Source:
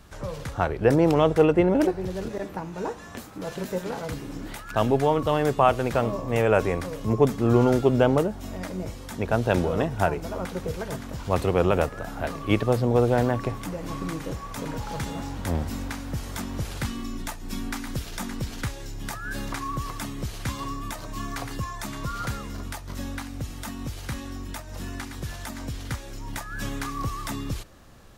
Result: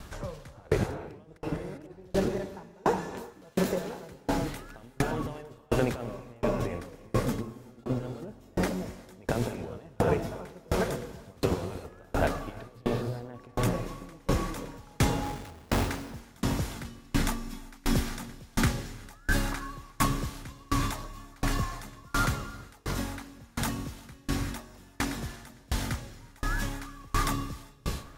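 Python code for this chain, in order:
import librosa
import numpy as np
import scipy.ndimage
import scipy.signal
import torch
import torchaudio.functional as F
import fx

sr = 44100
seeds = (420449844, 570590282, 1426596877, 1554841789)

p1 = fx.over_compress(x, sr, threshold_db=-26.0, ratio=-0.5)
p2 = fx.schmitt(p1, sr, flips_db=-35.5, at=(15.23, 15.85))
p3 = p2 + fx.echo_filtered(p2, sr, ms=444, feedback_pct=80, hz=3800.0, wet_db=-18.0, dry=0)
p4 = fx.rev_gated(p3, sr, seeds[0], gate_ms=420, shape='rising', drr_db=2.5)
p5 = fx.tremolo_decay(p4, sr, direction='decaying', hz=1.4, depth_db=33)
y = p5 * 10.0 ** (4.5 / 20.0)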